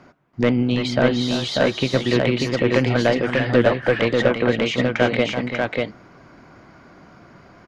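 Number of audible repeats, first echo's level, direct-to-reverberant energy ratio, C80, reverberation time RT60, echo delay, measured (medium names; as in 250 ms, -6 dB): 2, -8.0 dB, no reverb, no reverb, no reverb, 335 ms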